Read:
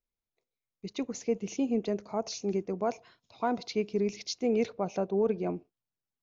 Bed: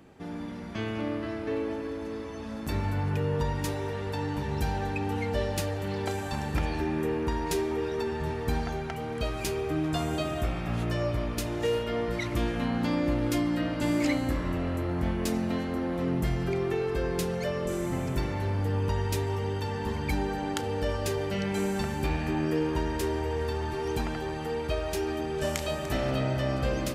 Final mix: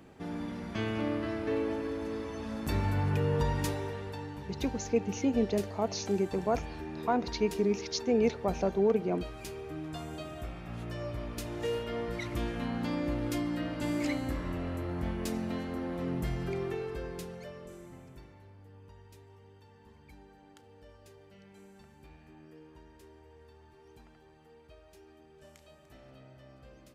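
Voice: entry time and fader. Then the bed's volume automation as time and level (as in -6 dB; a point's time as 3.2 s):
3.65 s, +1.0 dB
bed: 3.62 s -0.5 dB
4.36 s -11 dB
10.66 s -11 dB
11.69 s -5.5 dB
16.63 s -5.5 dB
18.55 s -26 dB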